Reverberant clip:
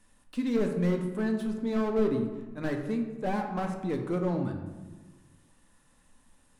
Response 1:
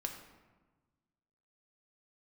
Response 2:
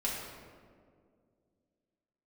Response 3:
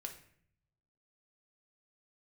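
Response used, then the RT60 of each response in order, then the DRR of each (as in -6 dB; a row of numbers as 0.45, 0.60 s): 1; 1.3, 2.1, 0.60 s; 3.0, -6.0, 2.5 dB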